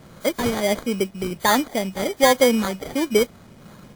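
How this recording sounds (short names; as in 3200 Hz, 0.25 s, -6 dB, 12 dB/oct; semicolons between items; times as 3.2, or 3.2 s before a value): phasing stages 2, 1.4 Hz, lowest notch 740–4700 Hz; aliases and images of a low sample rate 2700 Hz, jitter 0%; WMA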